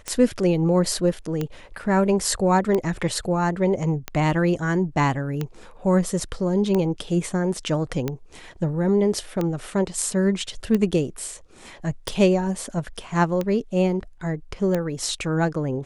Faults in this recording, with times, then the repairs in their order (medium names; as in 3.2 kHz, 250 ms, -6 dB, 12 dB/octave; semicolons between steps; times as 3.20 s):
tick 45 rpm -12 dBFS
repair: de-click